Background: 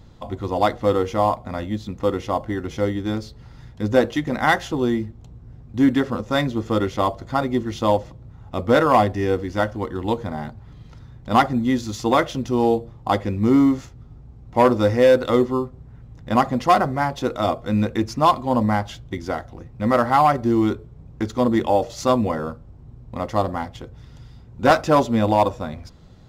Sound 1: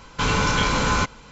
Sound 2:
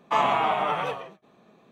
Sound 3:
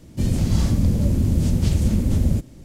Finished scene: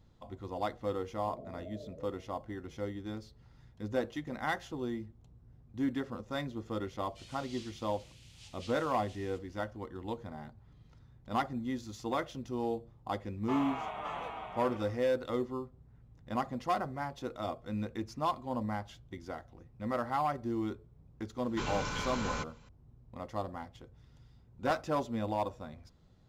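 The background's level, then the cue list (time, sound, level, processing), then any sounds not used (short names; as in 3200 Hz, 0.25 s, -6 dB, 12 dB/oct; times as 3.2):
background -16 dB
1.14 add 2 -15.5 dB + Chebyshev low-pass 660 Hz, order 10
6.98 add 3 -2.5 dB + ladder band-pass 3500 Hz, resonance 40%
13.37 add 2 -15.5 dB + echo 0.559 s -4 dB
21.38 add 1 -16 dB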